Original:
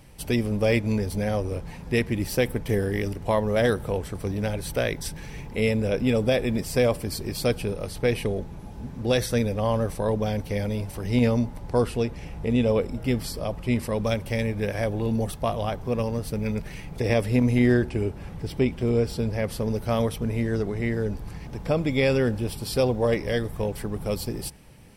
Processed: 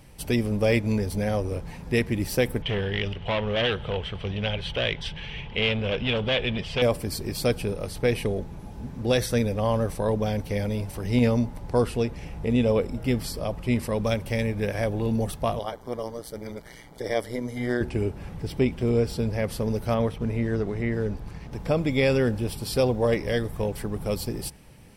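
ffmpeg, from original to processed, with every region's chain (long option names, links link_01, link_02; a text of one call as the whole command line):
ffmpeg -i in.wav -filter_complex "[0:a]asettb=1/sr,asplit=3[link_01][link_02][link_03];[link_01]atrim=end=2.624[link_04];[link_02]atrim=start=2.62:end=6.82,asetpts=PTS-STARTPTS,afade=type=in:duration=0.004:curve=qsin,afade=type=out:start_time=4.196:duration=0.004:curve=qsin,equalizer=frequency=290:width_type=o:width=0.57:gain=-10,volume=23dB,asoftclip=hard,volume=-23dB,lowpass=frequency=3100:width_type=q:width=7.1[link_05];[link_03]atrim=start=6.816[link_06];[link_04][link_05]acrossfade=duration=0.004:curve1=hsin:curve2=qsin[link_07];[link_07][link_06]acrossfade=duration=0.004:curve1=qsin:curve2=hsin,asettb=1/sr,asplit=3[link_08][link_09][link_10];[link_08]atrim=end=15.594[link_11];[link_09]atrim=start=15.59:end=17.81,asetpts=PTS-STARTPTS,afade=type=in:duration=0.004:curve=qsin,afade=type=out:start_time=2.216:duration=0.004:curve=qsin,bass=frequency=250:gain=-11,treble=frequency=4000:gain=1,tremolo=f=120:d=0.788,asuperstop=centerf=2600:order=12:qfactor=5.1[link_12];[link_10]atrim=start=17.806[link_13];[link_11][link_12]acrossfade=duration=0.004:curve1=hsin:curve2=qsin[link_14];[link_14][link_13]acrossfade=duration=0.004:curve1=qsin:curve2=hsin,asettb=1/sr,asplit=3[link_15][link_16][link_17];[link_15]atrim=end=19.944[link_18];[link_16]atrim=start=19.94:end=21.52,asetpts=PTS-STARTPTS,afade=type=in:duration=0.004:curve=qsin,afade=type=out:start_time=1.576:duration=0.004:curve=qsin,aeval=exprs='sgn(val(0))*max(abs(val(0))-0.00316,0)':channel_layout=same,highshelf=frequency=8800:gain=-8.5,acrossover=split=2900[link_19][link_20];[link_20]acompressor=threshold=-51dB:ratio=4:attack=1:release=60[link_21];[link_19][link_21]amix=inputs=2:normalize=0[link_22];[link_17]atrim=start=21.516[link_23];[link_18][link_22]acrossfade=duration=0.004:curve1=hsin:curve2=qsin[link_24];[link_24][link_23]acrossfade=duration=0.004:curve1=qsin:curve2=hsin" out.wav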